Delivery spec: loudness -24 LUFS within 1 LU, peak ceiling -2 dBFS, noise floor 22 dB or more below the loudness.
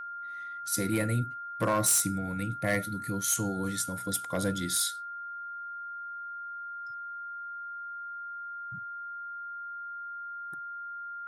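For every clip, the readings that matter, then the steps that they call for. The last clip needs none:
clipped samples 0.2%; clipping level -20.5 dBFS; steady tone 1.4 kHz; tone level -37 dBFS; loudness -32.5 LUFS; peak level -20.5 dBFS; loudness target -24.0 LUFS
-> clip repair -20.5 dBFS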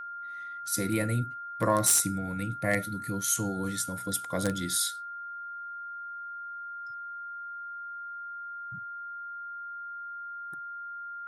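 clipped samples 0.0%; steady tone 1.4 kHz; tone level -37 dBFS
-> band-stop 1.4 kHz, Q 30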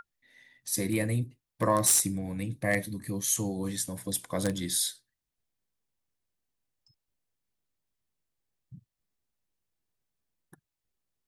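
steady tone not found; loudness -29.0 LUFS; peak level -11.5 dBFS; loudness target -24.0 LUFS
-> trim +5 dB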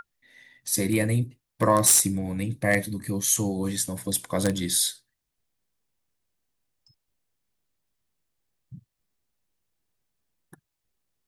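loudness -24.0 LUFS; peak level -6.5 dBFS; noise floor -82 dBFS

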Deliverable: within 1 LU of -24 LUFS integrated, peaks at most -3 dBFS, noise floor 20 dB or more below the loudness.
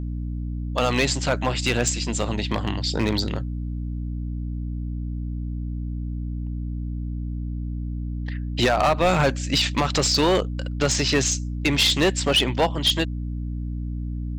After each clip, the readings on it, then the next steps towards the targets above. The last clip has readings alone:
clipped samples 0.8%; clipping level -13.5 dBFS; hum 60 Hz; highest harmonic 300 Hz; hum level -26 dBFS; loudness -24.0 LUFS; peak level -13.5 dBFS; loudness target -24.0 LUFS
-> clip repair -13.5 dBFS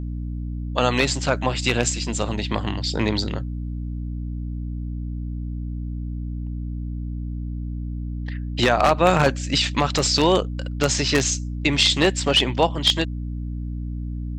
clipped samples 0.0%; hum 60 Hz; highest harmonic 300 Hz; hum level -26 dBFS
-> de-hum 60 Hz, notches 5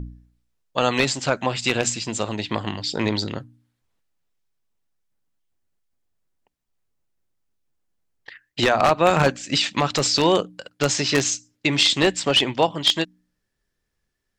hum not found; loudness -21.0 LUFS; peak level -3.5 dBFS; loudness target -24.0 LUFS
-> trim -3 dB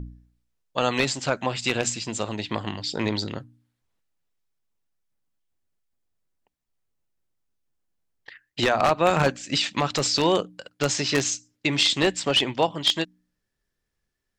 loudness -24.0 LUFS; peak level -6.5 dBFS; noise floor -80 dBFS

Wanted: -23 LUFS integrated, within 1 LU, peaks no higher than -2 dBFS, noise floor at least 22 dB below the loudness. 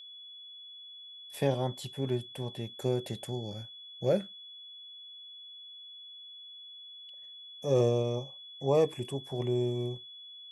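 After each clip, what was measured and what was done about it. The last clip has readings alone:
steady tone 3.4 kHz; tone level -46 dBFS; loudness -32.5 LUFS; peak level -14.5 dBFS; loudness target -23.0 LUFS
-> band-stop 3.4 kHz, Q 30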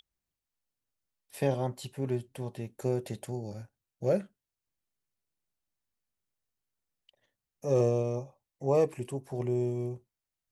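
steady tone not found; loudness -32.0 LUFS; peak level -14.5 dBFS; loudness target -23.0 LUFS
-> trim +9 dB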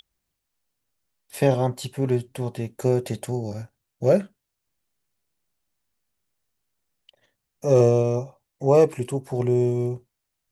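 loudness -23.0 LUFS; peak level -5.5 dBFS; noise floor -81 dBFS

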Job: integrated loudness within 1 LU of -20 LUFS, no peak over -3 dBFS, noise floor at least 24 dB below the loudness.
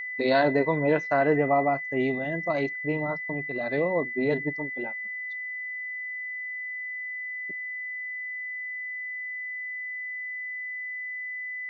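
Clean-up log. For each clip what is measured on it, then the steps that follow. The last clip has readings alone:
steady tone 2 kHz; tone level -32 dBFS; loudness -28.5 LUFS; peak level -10.0 dBFS; loudness target -20.0 LUFS
-> band-stop 2 kHz, Q 30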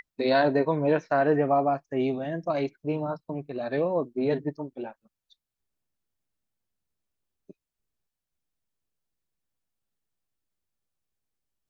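steady tone not found; loudness -27.0 LUFS; peak level -11.0 dBFS; loudness target -20.0 LUFS
-> trim +7 dB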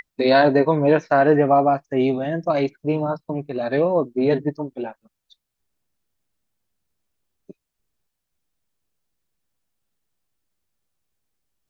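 loudness -20.0 LUFS; peak level -4.0 dBFS; noise floor -80 dBFS

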